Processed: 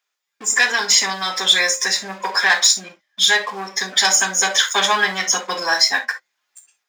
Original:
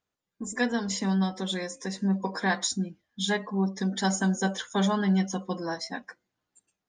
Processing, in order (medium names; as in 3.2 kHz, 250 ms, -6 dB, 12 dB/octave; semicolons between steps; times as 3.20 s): waveshaping leveller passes 2; in parallel at 0 dB: peak limiter -24 dBFS, peak gain reduction 11.5 dB; on the sum: treble shelf 2.2 kHz +7.5 dB; reverberation, pre-delay 3 ms, DRR 5.5 dB; level rider; high-pass 680 Hz 12 dB/octave; trim -1 dB